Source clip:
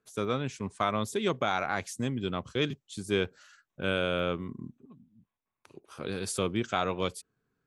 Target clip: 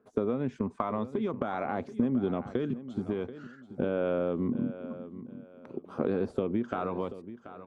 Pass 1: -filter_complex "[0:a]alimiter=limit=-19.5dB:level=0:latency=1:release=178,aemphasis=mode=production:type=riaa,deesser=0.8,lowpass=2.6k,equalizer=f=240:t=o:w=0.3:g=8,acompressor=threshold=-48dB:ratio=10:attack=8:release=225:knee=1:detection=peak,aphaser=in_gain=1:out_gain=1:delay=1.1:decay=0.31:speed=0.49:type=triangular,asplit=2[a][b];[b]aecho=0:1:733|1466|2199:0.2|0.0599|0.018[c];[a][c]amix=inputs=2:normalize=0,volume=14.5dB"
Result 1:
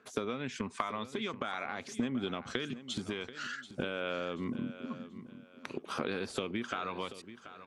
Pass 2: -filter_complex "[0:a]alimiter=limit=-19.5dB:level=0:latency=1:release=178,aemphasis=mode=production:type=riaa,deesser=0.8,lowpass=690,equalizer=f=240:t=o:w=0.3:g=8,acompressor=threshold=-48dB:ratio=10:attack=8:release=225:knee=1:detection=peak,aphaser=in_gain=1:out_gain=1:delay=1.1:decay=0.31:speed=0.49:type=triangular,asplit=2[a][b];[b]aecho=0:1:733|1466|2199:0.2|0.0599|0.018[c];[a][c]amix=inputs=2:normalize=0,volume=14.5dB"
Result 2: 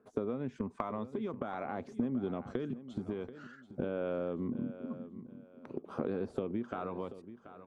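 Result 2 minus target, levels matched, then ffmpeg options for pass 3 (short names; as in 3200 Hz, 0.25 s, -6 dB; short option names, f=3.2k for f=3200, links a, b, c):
compressor: peak gain reduction +6.5 dB
-filter_complex "[0:a]alimiter=limit=-19.5dB:level=0:latency=1:release=178,aemphasis=mode=production:type=riaa,deesser=0.8,lowpass=690,equalizer=f=240:t=o:w=0.3:g=8,acompressor=threshold=-41dB:ratio=10:attack=8:release=225:knee=1:detection=peak,aphaser=in_gain=1:out_gain=1:delay=1.1:decay=0.31:speed=0.49:type=triangular,asplit=2[a][b];[b]aecho=0:1:733|1466|2199:0.2|0.0599|0.018[c];[a][c]amix=inputs=2:normalize=0,volume=14.5dB"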